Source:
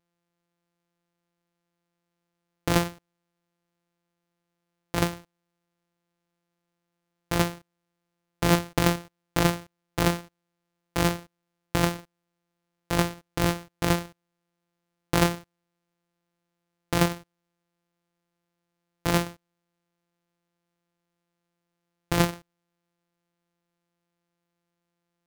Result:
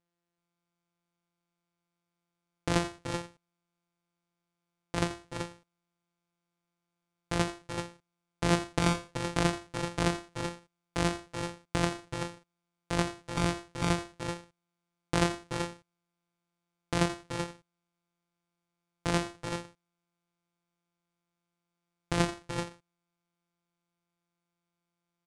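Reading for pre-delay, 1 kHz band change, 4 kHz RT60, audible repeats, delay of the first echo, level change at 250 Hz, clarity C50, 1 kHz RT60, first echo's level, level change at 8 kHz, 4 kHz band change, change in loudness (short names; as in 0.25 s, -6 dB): none, -4.0 dB, none, 2, 84 ms, -4.5 dB, none, none, -14.0 dB, -4.5 dB, -4.0 dB, -6.0 dB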